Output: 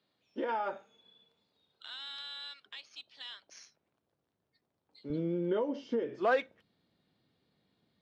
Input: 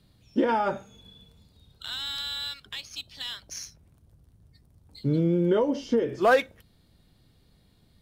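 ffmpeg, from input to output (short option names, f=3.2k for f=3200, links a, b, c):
-af "asetnsamples=n=441:p=0,asendcmd='5.1 highpass f 200',highpass=400,lowpass=3.9k,volume=-8dB"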